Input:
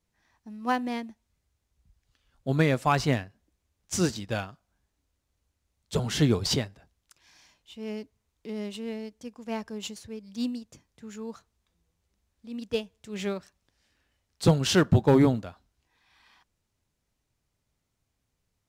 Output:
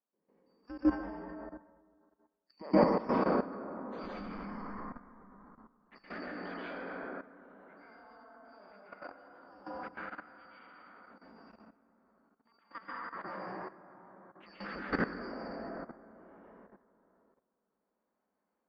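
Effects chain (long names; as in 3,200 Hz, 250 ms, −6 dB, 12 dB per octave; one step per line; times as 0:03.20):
band-splitting scrambler in four parts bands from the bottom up 2341
high-pass filter 44 Hz
parametric band 94 Hz −8.5 dB 1 octave
0:04.02–0:04.47: background noise brown −47 dBFS
Bessel low-pass filter 1,100 Hz, order 4
low shelf with overshoot 160 Hz −7.5 dB, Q 3
convolution reverb RT60 2.9 s, pre-delay 113 ms, DRR −9.5 dB
output level in coarse steps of 14 dB
0:00.80–0:02.84: multiband upward and downward expander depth 70%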